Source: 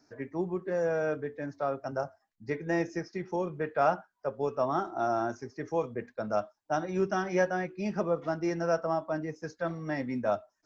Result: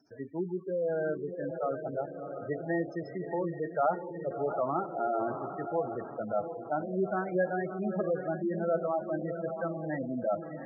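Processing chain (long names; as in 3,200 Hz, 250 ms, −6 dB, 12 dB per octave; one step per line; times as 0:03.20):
feedback delay with all-pass diffusion 676 ms, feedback 52%, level −7 dB
gate on every frequency bin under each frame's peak −15 dB strong
level −1.5 dB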